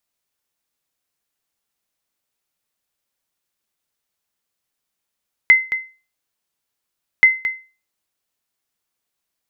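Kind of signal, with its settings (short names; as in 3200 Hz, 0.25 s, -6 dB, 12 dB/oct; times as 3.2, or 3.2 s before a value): sonar ping 2060 Hz, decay 0.33 s, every 1.73 s, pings 2, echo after 0.22 s, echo -11.5 dB -2.5 dBFS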